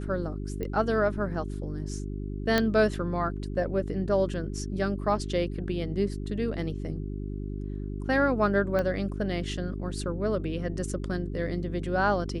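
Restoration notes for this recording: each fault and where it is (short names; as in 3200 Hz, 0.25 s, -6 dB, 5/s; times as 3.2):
hum 50 Hz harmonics 8 -34 dBFS
0.63 pop -21 dBFS
2.58 pop -10 dBFS
8.79 pop -17 dBFS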